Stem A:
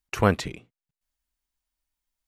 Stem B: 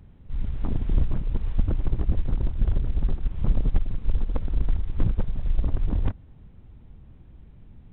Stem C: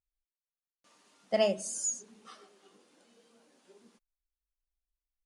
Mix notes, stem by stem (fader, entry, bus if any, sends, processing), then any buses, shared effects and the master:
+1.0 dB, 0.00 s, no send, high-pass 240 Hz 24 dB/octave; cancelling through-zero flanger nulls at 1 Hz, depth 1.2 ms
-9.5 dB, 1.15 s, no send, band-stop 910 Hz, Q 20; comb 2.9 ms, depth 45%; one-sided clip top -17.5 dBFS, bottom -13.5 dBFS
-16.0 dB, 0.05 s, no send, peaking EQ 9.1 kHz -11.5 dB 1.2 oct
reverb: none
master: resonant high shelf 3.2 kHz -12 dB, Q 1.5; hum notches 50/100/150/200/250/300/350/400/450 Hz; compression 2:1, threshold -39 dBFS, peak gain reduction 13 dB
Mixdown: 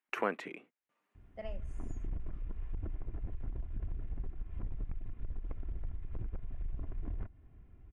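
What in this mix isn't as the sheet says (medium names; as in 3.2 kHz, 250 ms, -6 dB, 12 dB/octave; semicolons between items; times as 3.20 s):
stem A: missing cancelling through-zero flanger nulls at 1 Hz, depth 1.2 ms; stem C: missing peaking EQ 9.1 kHz -11.5 dB 1.2 oct; master: missing hum notches 50/100/150/200/250/300/350/400/450 Hz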